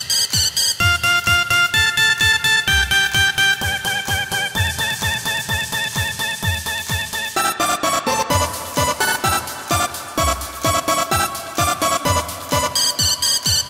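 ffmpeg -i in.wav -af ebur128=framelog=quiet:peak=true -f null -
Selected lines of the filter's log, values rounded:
Integrated loudness:
  I:         -17.0 LUFS
  Threshold: -27.0 LUFS
Loudness range:
  LRA:         5.5 LU
  Threshold: -37.5 LUFS
  LRA low:   -19.6 LUFS
  LRA high:  -14.2 LUFS
True peak:
  Peak:       -3.7 dBFS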